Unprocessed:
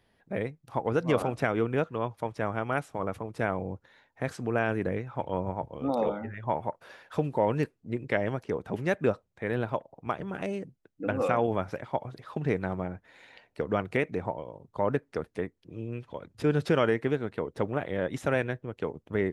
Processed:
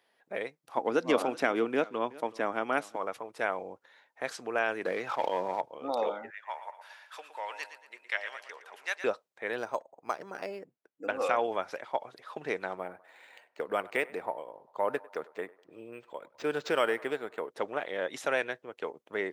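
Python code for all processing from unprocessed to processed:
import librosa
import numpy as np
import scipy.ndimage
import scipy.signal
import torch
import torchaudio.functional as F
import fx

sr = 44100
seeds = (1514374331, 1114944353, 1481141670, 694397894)

y = fx.chain(x, sr, fx.peak_eq(hz=260.0, db=11.5, octaves=0.96),
    fx.echo_single(ms=375, db=-20.5), at=(0.77, 2.96))
y = fx.chain(y, sr, fx.highpass(hz=130.0, slope=12),
    fx.leveller(passes=1),
    fx.sustainer(db_per_s=34.0), at=(4.85, 5.61))
y = fx.chain(y, sr, fx.highpass(hz=1300.0, slope=12),
    fx.echo_feedback(ms=116, feedback_pct=47, wet_db=-10.5), at=(6.3, 9.04))
y = fx.chain(y, sr, fx.air_absorb(metres=160.0),
    fx.resample_linear(factor=6), at=(9.58, 11.07))
y = fx.chain(y, sr, fx.echo_banded(ms=99, feedback_pct=62, hz=890.0, wet_db=-19),
    fx.resample_linear(factor=4), at=(12.77, 17.5))
y = scipy.signal.sosfilt(scipy.signal.butter(2, 500.0, 'highpass', fs=sr, output='sos'), y)
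y = fx.dynamic_eq(y, sr, hz=4700.0, q=0.9, threshold_db=-53.0, ratio=4.0, max_db=6)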